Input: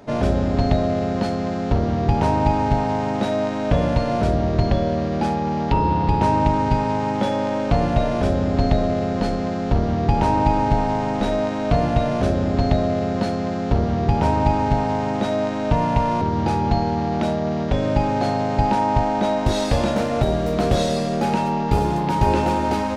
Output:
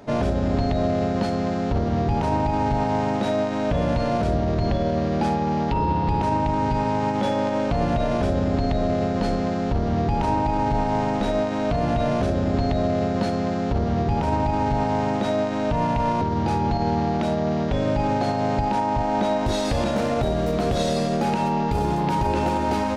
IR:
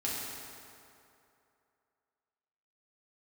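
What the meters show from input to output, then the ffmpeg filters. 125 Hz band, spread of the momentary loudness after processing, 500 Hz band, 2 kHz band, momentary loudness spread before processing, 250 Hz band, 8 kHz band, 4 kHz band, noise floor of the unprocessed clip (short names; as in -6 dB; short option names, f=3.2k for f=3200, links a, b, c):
-3.0 dB, 1 LU, -1.5 dB, -2.0 dB, 4 LU, -2.0 dB, -2.0 dB, -2.0 dB, -24 dBFS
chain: -af "alimiter=limit=-13.5dB:level=0:latency=1:release=48"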